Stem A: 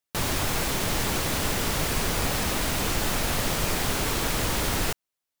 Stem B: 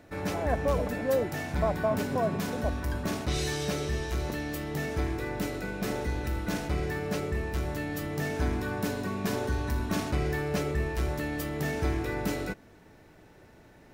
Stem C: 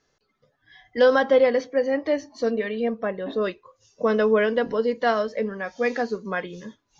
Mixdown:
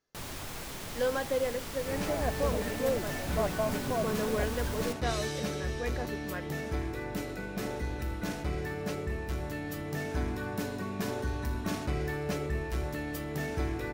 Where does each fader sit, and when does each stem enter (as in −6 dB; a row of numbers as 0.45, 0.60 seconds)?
−14.0, −3.5, −13.0 decibels; 0.00, 1.75, 0.00 seconds